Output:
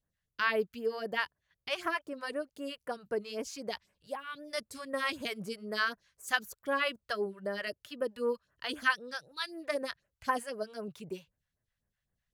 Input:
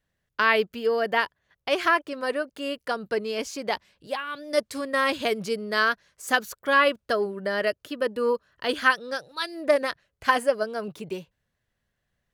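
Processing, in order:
all-pass phaser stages 2, 3.9 Hz, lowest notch 260–4,200 Hz
level −7 dB

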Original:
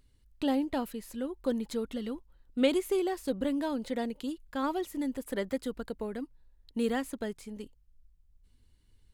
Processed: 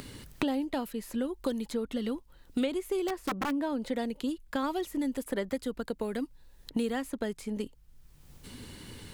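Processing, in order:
0:03.08–0:03.62: wrap-around overflow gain 24.5 dB
multiband upward and downward compressor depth 100%

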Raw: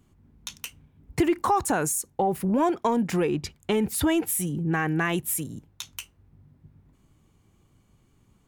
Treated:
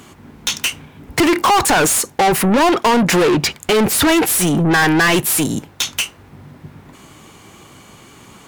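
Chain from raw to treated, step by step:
mid-hump overdrive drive 31 dB, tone 7,200 Hz, clips at −12 dBFS
level +5 dB

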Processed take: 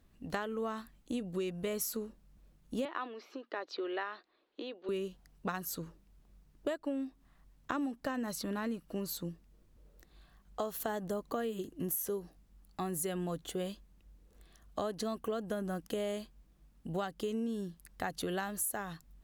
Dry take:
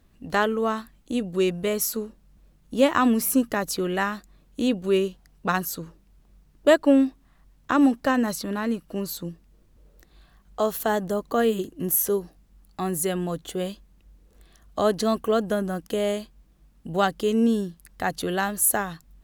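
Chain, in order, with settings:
downward compressor 16 to 1, threshold −26 dBFS, peak gain reduction 15.5 dB
0:02.85–0:04.89: elliptic band-pass filter 340–4,200 Hz, stop band 40 dB
level −6 dB

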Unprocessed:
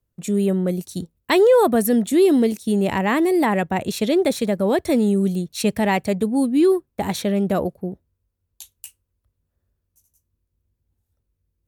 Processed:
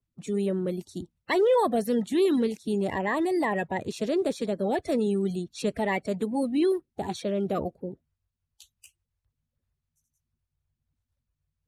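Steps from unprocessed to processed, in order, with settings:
spectral magnitudes quantised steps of 30 dB
high-frequency loss of the air 51 metres
level −7 dB

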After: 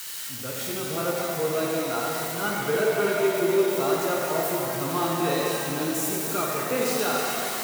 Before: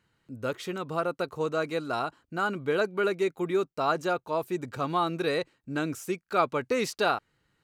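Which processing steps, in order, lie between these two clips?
spike at every zero crossing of −23 dBFS
harmonic and percussive parts rebalanced percussive −9 dB
reverb with rising layers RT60 3.2 s, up +7 semitones, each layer −8 dB, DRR −3.5 dB

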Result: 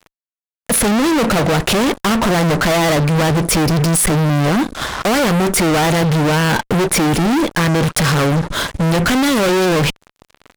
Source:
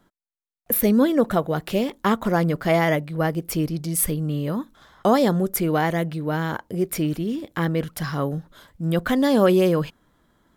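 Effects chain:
Butterworth low-pass 11,000 Hz 96 dB per octave
in parallel at +3 dB: downward compressor 12 to 1, threshold −31 dBFS, peak gain reduction 19.5 dB
on the sum: fuzz pedal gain 40 dB, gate −47 dBFS

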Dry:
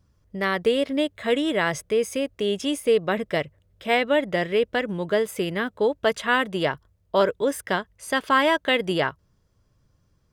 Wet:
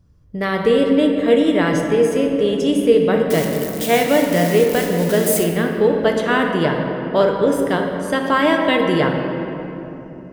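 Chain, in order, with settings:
0:03.30–0:05.44: spike at every zero crossing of −17 dBFS
low-shelf EQ 460 Hz +8.5 dB
rectangular room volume 170 cubic metres, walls hard, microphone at 0.39 metres

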